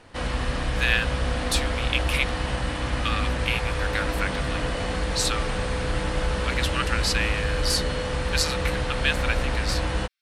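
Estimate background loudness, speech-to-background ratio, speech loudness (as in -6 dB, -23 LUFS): -27.5 LUFS, -0.5 dB, -28.0 LUFS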